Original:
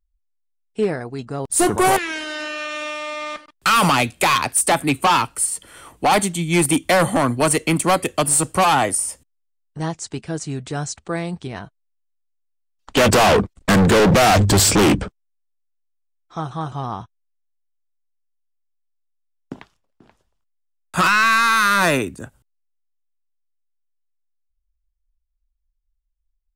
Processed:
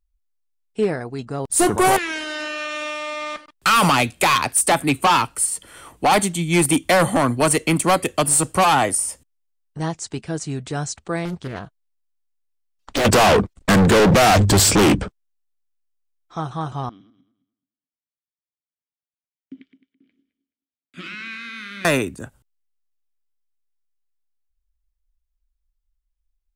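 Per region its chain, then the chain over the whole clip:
0:11.25–0:13.05: downward compressor 10 to 1, threshold −18 dBFS + highs frequency-modulated by the lows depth 0.88 ms
0:16.89–0:21.85: feedback delay that plays each chunk backwards 107 ms, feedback 44%, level −9 dB + formant filter i
whole clip: no processing

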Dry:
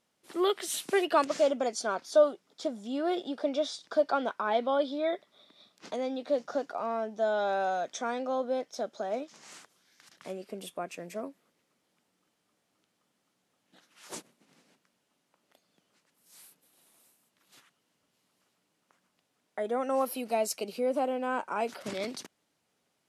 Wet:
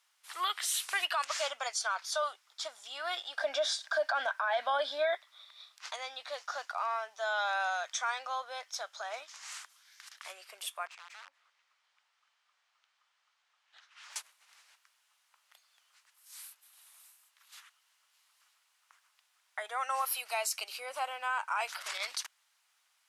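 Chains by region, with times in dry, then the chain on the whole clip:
0:03.37–0:05.15: high-shelf EQ 8,100 Hz +4.5 dB + hollow resonant body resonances 270/620/1,600 Hz, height 15 dB, ringing for 25 ms
0:10.86–0:14.16: downward compressor 3 to 1, threshold −50 dBFS + wrap-around overflow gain 45.5 dB + high-frequency loss of the air 110 metres
whole clip: high-pass filter 1,000 Hz 24 dB per octave; brickwall limiter −28.5 dBFS; level +6 dB

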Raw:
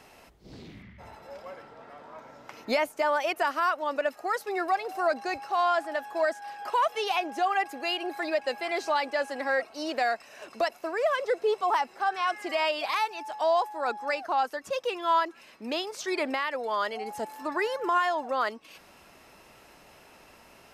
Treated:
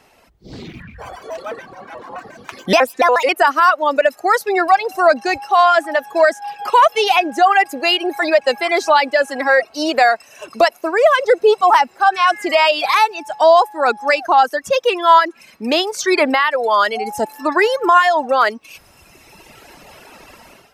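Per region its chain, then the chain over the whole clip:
0:00.73–0:03.29: delay with a high-pass on its return 163 ms, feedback 63%, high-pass 4,700 Hz, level −9 dB + pitch modulation by a square or saw wave square 7 Hz, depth 250 cents
whole clip: reverb reduction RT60 1.9 s; automatic gain control gain up to 15 dB; level +1 dB

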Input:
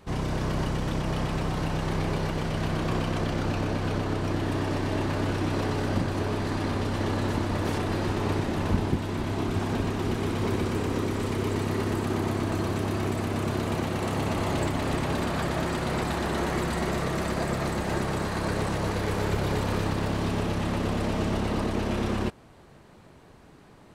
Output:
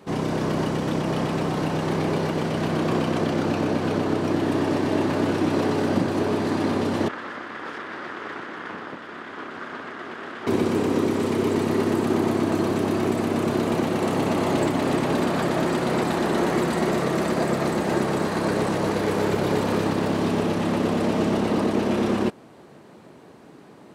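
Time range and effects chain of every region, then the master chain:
0:07.08–0:10.47: lower of the sound and its delayed copy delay 0.6 ms + resonant band-pass 1,500 Hz, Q 1.2 + highs frequency-modulated by the lows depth 0.3 ms
whole clip: high-pass filter 250 Hz 12 dB per octave; low-shelf EQ 470 Hz +10 dB; level +2.5 dB

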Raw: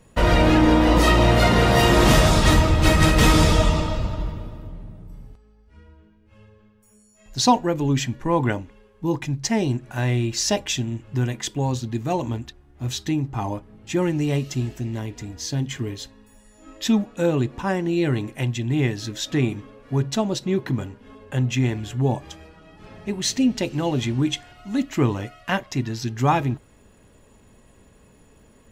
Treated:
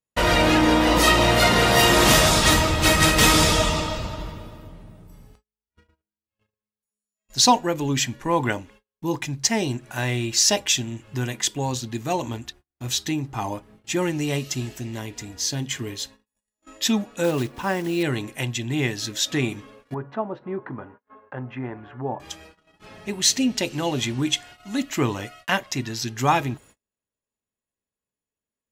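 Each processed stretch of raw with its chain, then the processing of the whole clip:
0:17.24–0:18.04: one scale factor per block 5 bits + high-shelf EQ 6,000 Hz −10 dB
0:19.94–0:22.20: low-pass filter 1,300 Hz 24 dB per octave + spectral tilt +3 dB per octave + one half of a high-frequency compander encoder only
whole clip: noise gate −45 dBFS, range −38 dB; spectral tilt +2 dB per octave; level +1 dB

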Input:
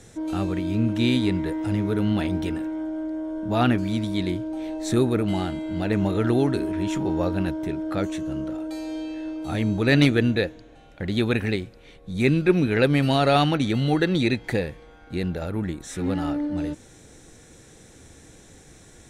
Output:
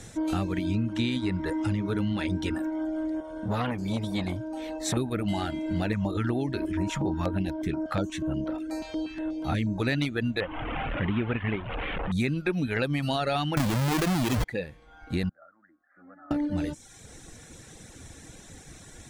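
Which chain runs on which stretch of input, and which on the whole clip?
0:00.65–0:02.54: low-pass filter 8,900 Hz + notch filter 700 Hz, Q 5.1
0:03.20–0:04.97: notch comb filter 340 Hz + saturating transformer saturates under 870 Hz
0:05.93–0:09.80: high-shelf EQ 7,100 Hz −6.5 dB + notch on a step sequencer 8.3 Hz 350–8,000 Hz
0:10.40–0:12.12: linear delta modulator 16 kbit/s, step −26 dBFS + high-frequency loss of the air 81 metres
0:13.57–0:14.44: each half-wave held at its own peak + envelope flattener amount 100%
0:15.29–0:16.31: Butterworth low-pass 1,500 Hz + first difference + phaser with its sweep stopped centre 620 Hz, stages 8
whole clip: reverb reduction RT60 0.77 s; parametric band 420 Hz −5 dB 0.77 octaves; downward compressor 10 to 1, threshold −28 dBFS; level +4.5 dB

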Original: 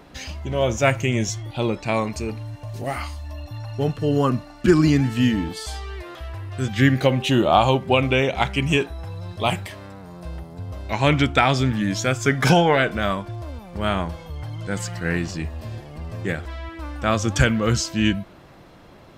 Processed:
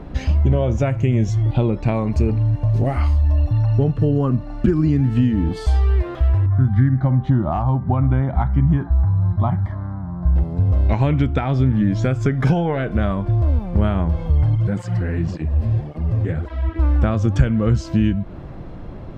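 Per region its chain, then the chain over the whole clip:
0:06.46–0:10.36: low-pass filter 2,400 Hz + phaser with its sweep stopped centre 1,100 Hz, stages 4 + hard clipping −11 dBFS
0:11.44–0:12.03: high-shelf EQ 9,000 Hz −11.5 dB + notch filter 2,600 Hz, Q 30
0:14.55–0:16.76: downward compressor 2.5 to 1, threshold −29 dBFS + through-zero flanger with one copy inverted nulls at 1.8 Hz, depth 6.9 ms
whole clip: high-shelf EQ 5,200 Hz −4.5 dB; downward compressor 6 to 1, threshold −27 dBFS; spectral tilt −3.5 dB per octave; level +5 dB

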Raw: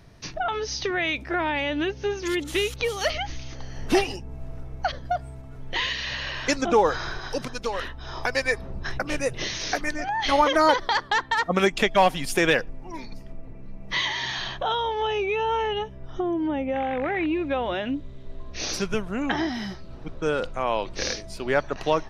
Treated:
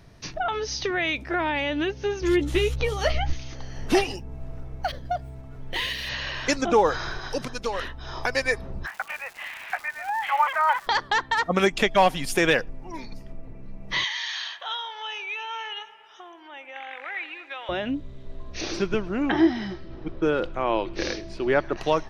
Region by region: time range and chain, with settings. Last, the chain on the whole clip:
0:02.21–0:03.33: spectral tilt −2 dB per octave + double-tracking delay 14 ms −7 dB
0:04.18–0:06.09: running median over 5 samples + dynamic equaliser 1,200 Hz, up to −5 dB, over −43 dBFS, Q 1.3
0:08.85–0:10.86: Chebyshev band-pass filter 780–2,600 Hz, order 3 + surface crackle 550 per second −35 dBFS
0:14.04–0:17.69: high-pass filter 1,500 Hz + delay with a low-pass on its return 113 ms, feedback 68%, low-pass 2,100 Hz, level −14.5 dB
0:18.61–0:21.77: low-pass filter 4,000 Hz + parametric band 340 Hz +13.5 dB 0.24 octaves + delay with a high-pass on its return 105 ms, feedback 71%, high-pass 1,600 Hz, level −22.5 dB
whole clip: no processing

